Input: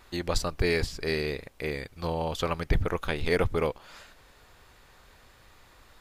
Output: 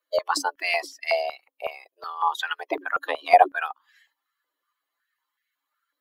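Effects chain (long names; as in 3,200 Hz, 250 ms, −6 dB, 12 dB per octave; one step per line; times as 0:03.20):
spectral dynamics exaggerated over time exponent 2
frequency shifter +270 Hz
high-pass on a step sequencer 5.4 Hz 550–1,900 Hz
level +5.5 dB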